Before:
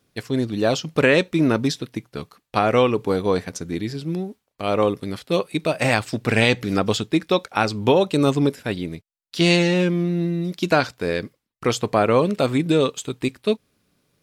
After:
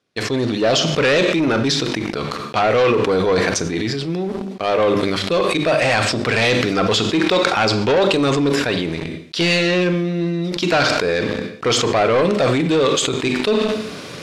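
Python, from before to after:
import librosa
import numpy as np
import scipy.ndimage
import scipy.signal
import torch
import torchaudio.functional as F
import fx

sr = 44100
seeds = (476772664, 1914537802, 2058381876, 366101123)

p1 = fx.hum_notches(x, sr, base_hz=50, count=7)
p2 = fx.fold_sine(p1, sr, drive_db=11, ceiling_db=-3.0)
p3 = p1 + (p2 * 10.0 ** (-12.0 / 20.0))
p4 = scipy.signal.sosfilt(scipy.signal.butter(2, 54.0, 'highpass', fs=sr, output='sos'), p3)
p5 = fx.low_shelf(p4, sr, hz=170.0, db=-10.0)
p6 = fx.notch(p5, sr, hz=860.0, q=20.0)
p7 = fx.rev_schroeder(p6, sr, rt60_s=0.52, comb_ms=28, drr_db=13.0)
p8 = fx.dynamic_eq(p7, sr, hz=230.0, q=1.2, threshold_db=-31.0, ratio=4.0, max_db=-4)
p9 = fx.leveller(p8, sr, passes=2)
p10 = scipy.signal.sosfilt(scipy.signal.butter(2, 5800.0, 'lowpass', fs=sr, output='sos'), p9)
p11 = fx.sustainer(p10, sr, db_per_s=22.0)
y = p11 * 10.0 ** (-6.0 / 20.0)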